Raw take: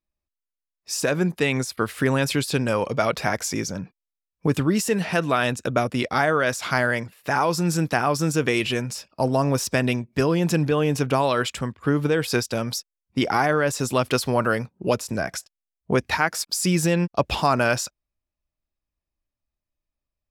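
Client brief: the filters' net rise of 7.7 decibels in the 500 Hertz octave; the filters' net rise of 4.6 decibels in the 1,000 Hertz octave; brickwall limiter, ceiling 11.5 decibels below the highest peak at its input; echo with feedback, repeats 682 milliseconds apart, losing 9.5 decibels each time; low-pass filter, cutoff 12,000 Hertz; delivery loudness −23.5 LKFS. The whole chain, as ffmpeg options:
ffmpeg -i in.wav -af "lowpass=12000,equalizer=frequency=500:width_type=o:gain=8.5,equalizer=frequency=1000:width_type=o:gain=3,alimiter=limit=-11.5dB:level=0:latency=1,aecho=1:1:682|1364|2046|2728:0.335|0.111|0.0365|0.012,volume=-1.5dB" out.wav

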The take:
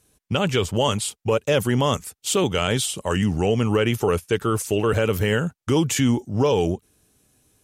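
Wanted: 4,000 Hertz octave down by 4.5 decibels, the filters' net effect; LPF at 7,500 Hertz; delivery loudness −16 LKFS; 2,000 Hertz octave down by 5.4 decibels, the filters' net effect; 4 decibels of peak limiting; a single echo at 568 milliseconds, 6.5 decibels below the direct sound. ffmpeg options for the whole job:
ffmpeg -i in.wav -af "lowpass=7500,equalizer=frequency=2000:width_type=o:gain=-6.5,equalizer=frequency=4000:width_type=o:gain=-3,alimiter=limit=-13dB:level=0:latency=1,aecho=1:1:568:0.473,volume=8dB" out.wav

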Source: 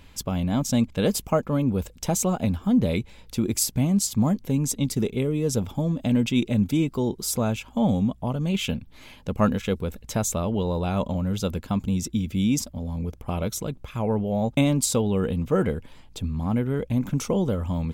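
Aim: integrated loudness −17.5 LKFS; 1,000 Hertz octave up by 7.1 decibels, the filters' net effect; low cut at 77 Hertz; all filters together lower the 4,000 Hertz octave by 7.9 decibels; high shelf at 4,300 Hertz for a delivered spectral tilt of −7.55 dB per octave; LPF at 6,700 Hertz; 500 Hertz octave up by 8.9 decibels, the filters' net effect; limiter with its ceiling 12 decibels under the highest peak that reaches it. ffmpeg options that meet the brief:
ffmpeg -i in.wav -af "highpass=77,lowpass=6700,equalizer=frequency=500:width_type=o:gain=9,equalizer=frequency=1000:width_type=o:gain=6.5,equalizer=frequency=4000:width_type=o:gain=-7.5,highshelf=frequency=4300:gain=-5,volume=6.5dB,alimiter=limit=-6.5dB:level=0:latency=1" out.wav

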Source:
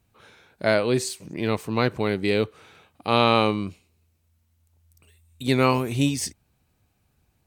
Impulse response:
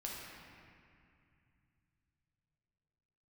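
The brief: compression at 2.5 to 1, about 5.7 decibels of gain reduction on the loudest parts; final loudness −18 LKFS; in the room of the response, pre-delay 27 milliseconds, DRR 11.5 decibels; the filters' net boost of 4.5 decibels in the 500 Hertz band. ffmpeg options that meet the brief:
-filter_complex "[0:a]equalizer=frequency=500:width_type=o:gain=5.5,acompressor=threshold=-20dB:ratio=2.5,asplit=2[link_01][link_02];[1:a]atrim=start_sample=2205,adelay=27[link_03];[link_02][link_03]afir=irnorm=-1:irlink=0,volume=-11.5dB[link_04];[link_01][link_04]amix=inputs=2:normalize=0,volume=7.5dB"

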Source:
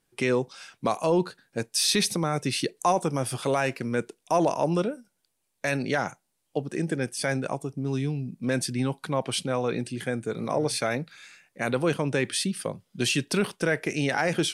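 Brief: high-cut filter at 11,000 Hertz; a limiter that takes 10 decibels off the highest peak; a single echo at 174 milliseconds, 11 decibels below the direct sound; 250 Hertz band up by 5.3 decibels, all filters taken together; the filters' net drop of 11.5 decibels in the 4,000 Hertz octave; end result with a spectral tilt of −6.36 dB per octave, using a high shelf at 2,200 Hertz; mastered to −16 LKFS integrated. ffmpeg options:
ffmpeg -i in.wav -af "lowpass=11000,equalizer=frequency=250:width_type=o:gain=7,highshelf=frequency=2200:gain=-9,equalizer=frequency=4000:width_type=o:gain=-6,alimiter=limit=-21dB:level=0:latency=1,aecho=1:1:174:0.282,volume=15.5dB" out.wav

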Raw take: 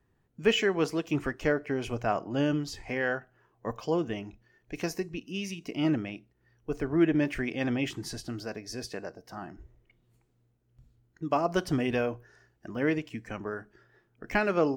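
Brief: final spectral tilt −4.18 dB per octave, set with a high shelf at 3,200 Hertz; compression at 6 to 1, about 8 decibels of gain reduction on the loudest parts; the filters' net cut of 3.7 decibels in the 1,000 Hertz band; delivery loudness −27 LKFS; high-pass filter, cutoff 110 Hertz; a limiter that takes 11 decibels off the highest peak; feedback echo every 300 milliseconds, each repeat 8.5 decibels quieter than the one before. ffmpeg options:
ffmpeg -i in.wav -af "highpass=110,equalizer=frequency=1000:width_type=o:gain=-6.5,highshelf=frequency=3200:gain=8,acompressor=threshold=-27dB:ratio=6,alimiter=level_in=2.5dB:limit=-24dB:level=0:latency=1,volume=-2.5dB,aecho=1:1:300|600|900|1200:0.376|0.143|0.0543|0.0206,volume=10.5dB" out.wav

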